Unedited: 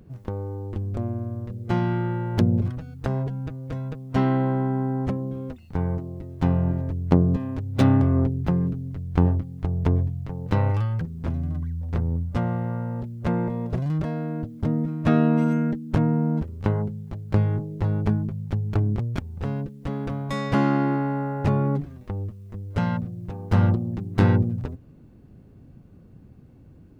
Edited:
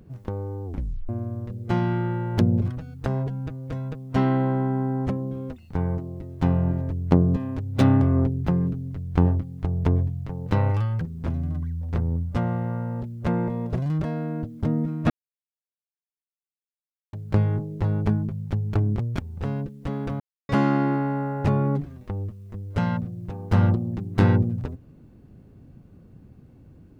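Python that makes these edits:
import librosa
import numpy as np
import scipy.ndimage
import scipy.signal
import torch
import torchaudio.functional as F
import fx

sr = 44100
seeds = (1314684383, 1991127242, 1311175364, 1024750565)

y = fx.edit(x, sr, fx.tape_stop(start_s=0.65, length_s=0.44),
    fx.silence(start_s=15.1, length_s=2.03),
    fx.silence(start_s=20.2, length_s=0.29), tone=tone)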